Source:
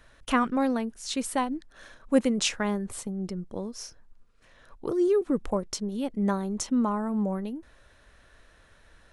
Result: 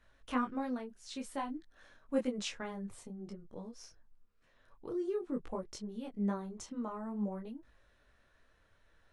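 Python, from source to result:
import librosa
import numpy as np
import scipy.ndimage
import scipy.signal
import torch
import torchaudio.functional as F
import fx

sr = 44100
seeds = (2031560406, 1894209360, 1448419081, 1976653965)

y = fx.high_shelf(x, sr, hz=7600.0, db=-9.0)
y = fx.detune_double(y, sr, cents=18)
y = y * librosa.db_to_amplitude(-7.5)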